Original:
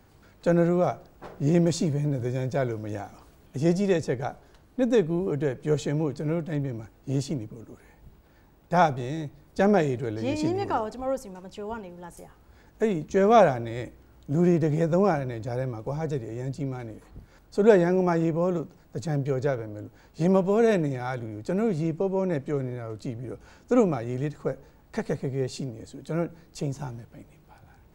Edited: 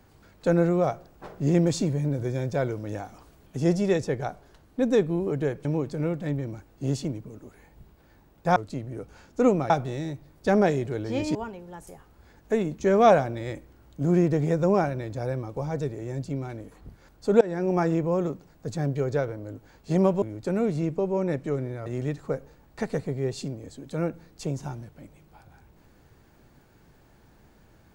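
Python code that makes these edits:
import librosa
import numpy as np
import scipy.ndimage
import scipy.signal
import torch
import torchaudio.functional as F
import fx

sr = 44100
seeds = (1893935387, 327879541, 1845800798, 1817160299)

y = fx.edit(x, sr, fx.cut(start_s=5.65, length_s=0.26),
    fx.cut(start_s=10.47, length_s=1.18),
    fx.fade_in_from(start_s=17.71, length_s=0.35, floor_db=-23.5),
    fx.cut(start_s=20.52, length_s=0.72),
    fx.move(start_s=22.88, length_s=1.14, to_s=8.82), tone=tone)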